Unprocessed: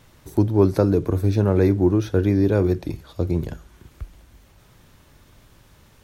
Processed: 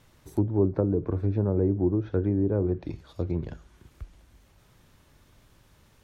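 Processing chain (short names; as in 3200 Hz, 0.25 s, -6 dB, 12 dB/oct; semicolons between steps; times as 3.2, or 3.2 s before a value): treble ducked by the level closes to 640 Hz, closed at -13 dBFS; gain -6.5 dB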